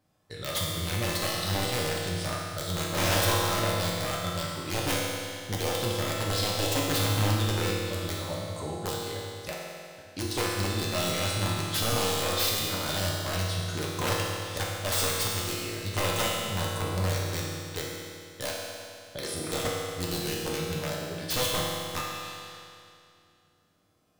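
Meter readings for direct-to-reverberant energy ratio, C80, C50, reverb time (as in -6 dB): -4.5 dB, 0.5 dB, -1.0 dB, 2.4 s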